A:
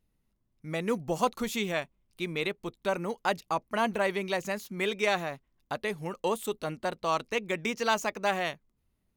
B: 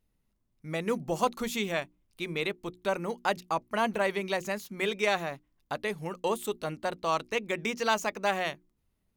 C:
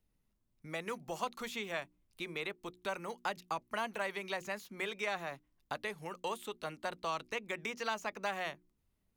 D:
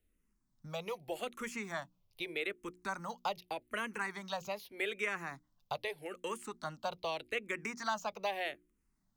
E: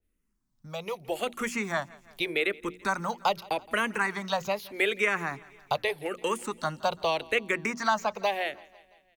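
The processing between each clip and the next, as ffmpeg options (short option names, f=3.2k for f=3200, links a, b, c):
-af "bandreject=f=60:t=h:w=6,bandreject=f=120:t=h:w=6,bandreject=f=180:t=h:w=6,bandreject=f=240:t=h:w=6,bandreject=f=300:t=h:w=6,bandreject=f=360:t=h:w=6"
-filter_complex "[0:a]acrossover=split=310|740|1900|4300[a][b][c][d][e];[a]acompressor=threshold=-49dB:ratio=4[f];[b]acompressor=threshold=-43dB:ratio=4[g];[c]acompressor=threshold=-34dB:ratio=4[h];[d]acompressor=threshold=-41dB:ratio=4[i];[e]acompressor=threshold=-51dB:ratio=4[j];[f][g][h][i][j]amix=inputs=5:normalize=0,volume=-3dB"
-filter_complex "[0:a]asplit=2[a][b];[b]afreqshift=-0.82[c];[a][c]amix=inputs=2:normalize=1,volume=3dB"
-af "dynaudnorm=f=220:g=9:m=10.5dB,aecho=1:1:168|336|504|672:0.0708|0.0418|0.0246|0.0145,adynamicequalizer=threshold=0.0126:dfrequency=2600:dqfactor=0.7:tfrequency=2600:tqfactor=0.7:attack=5:release=100:ratio=0.375:range=2.5:mode=cutabove:tftype=highshelf"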